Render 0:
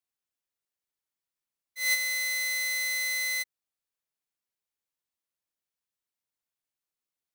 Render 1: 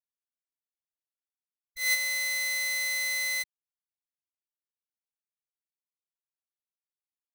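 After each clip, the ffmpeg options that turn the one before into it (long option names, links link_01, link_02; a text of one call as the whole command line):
ffmpeg -i in.wav -af "acrusher=bits=8:dc=4:mix=0:aa=0.000001,anlmdn=0.000631" out.wav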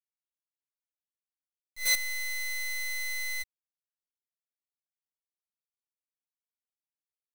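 ffmpeg -i in.wav -af "acrusher=bits=5:dc=4:mix=0:aa=0.000001" out.wav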